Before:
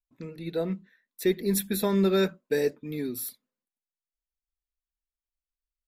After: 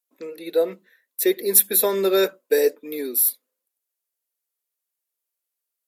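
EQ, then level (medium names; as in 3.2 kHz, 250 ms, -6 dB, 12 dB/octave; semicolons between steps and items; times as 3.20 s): high-pass 310 Hz 24 dB/octave; peaking EQ 510 Hz +6.5 dB 0.44 oct; peaking EQ 13 kHz +13.5 dB 1.1 oct; +4.5 dB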